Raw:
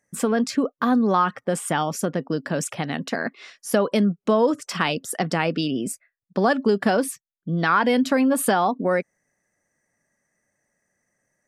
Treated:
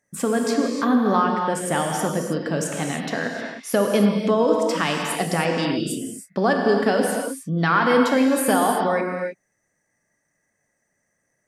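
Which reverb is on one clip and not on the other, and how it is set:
reverb whose tail is shaped and stops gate 340 ms flat, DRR 1 dB
level −1 dB

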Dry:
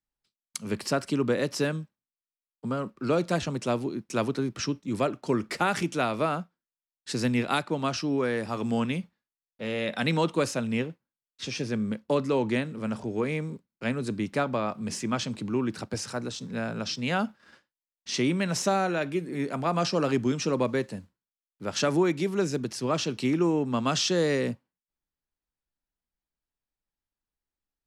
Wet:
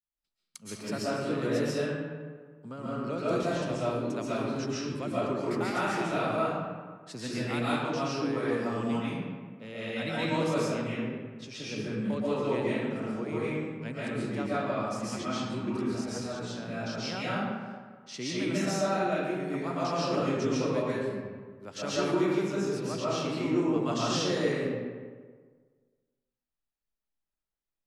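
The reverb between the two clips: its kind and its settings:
comb and all-pass reverb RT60 1.6 s, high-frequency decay 0.55×, pre-delay 95 ms, DRR −9 dB
level −12 dB

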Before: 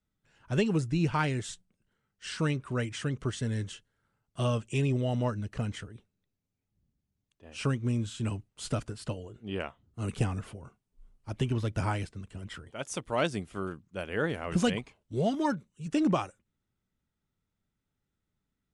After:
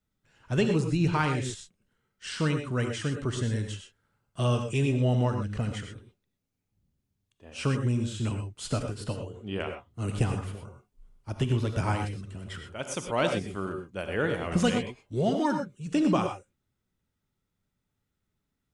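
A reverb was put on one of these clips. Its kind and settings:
reverb whose tail is shaped and stops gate 140 ms rising, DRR 5 dB
level +1.5 dB

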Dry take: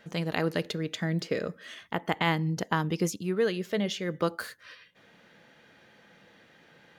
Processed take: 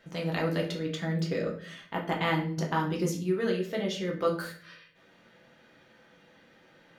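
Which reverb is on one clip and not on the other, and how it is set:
rectangular room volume 54 cubic metres, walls mixed, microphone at 0.71 metres
level −5 dB

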